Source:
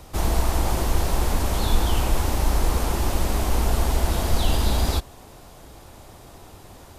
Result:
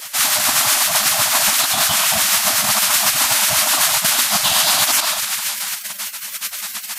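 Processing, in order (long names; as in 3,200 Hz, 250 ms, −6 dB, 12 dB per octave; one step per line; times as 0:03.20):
on a send at −16 dB: convolution reverb RT60 1.9 s, pre-delay 40 ms
on the sum: brick-wall band-stop 210–600 Hz
dynamic equaliser 200 Hz, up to +8 dB, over −45 dBFS, Q 1.2
rotating-speaker cabinet horn 8 Hz
high-shelf EQ 2,500 Hz +6.5 dB
reversed playback
downward compressor 6 to 1, threshold −32 dBFS, peak gain reduction 18.5 dB
reversed playback
mains-hum notches 50/100/150/200/250/300/350/400 Hz
gate on every frequency bin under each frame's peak −25 dB weak
boost into a limiter +34 dB
level −3.5 dB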